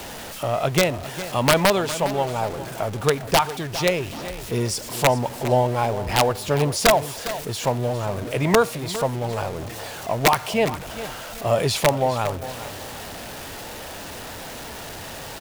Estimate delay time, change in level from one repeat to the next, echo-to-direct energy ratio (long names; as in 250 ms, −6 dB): 407 ms, repeats not evenly spaced, −13.0 dB